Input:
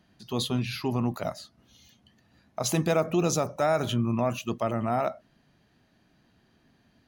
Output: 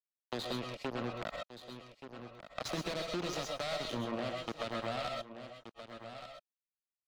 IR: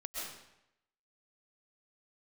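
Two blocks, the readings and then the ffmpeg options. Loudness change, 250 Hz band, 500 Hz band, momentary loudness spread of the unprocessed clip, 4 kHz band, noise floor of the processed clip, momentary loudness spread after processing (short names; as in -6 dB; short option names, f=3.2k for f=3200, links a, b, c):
-11.5 dB, -12.5 dB, -10.5 dB, 9 LU, -4.5 dB, under -85 dBFS, 13 LU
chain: -filter_complex "[0:a]asuperstop=centerf=940:order=4:qfactor=3.7,acrusher=bits=3:mix=0:aa=0.5,equalizer=f=4.2k:w=1.4:g=9.5,acrossover=split=270|3000[a][b][c];[b]acompressor=threshold=-31dB:ratio=6[d];[a][d][c]amix=inputs=3:normalize=0,asplit=2[e][f];[f]highpass=f=720:p=1,volume=20dB,asoftclip=type=tanh:threshold=-10dB[g];[e][g]amix=inputs=2:normalize=0,lowpass=f=1.3k:p=1,volume=-6dB,aecho=1:1:1176:0.119[h];[1:a]atrim=start_sample=2205,afade=t=out:st=0.18:d=0.01,atrim=end_sample=8379[i];[h][i]afir=irnorm=-1:irlink=0,acompressor=threshold=-41dB:ratio=2"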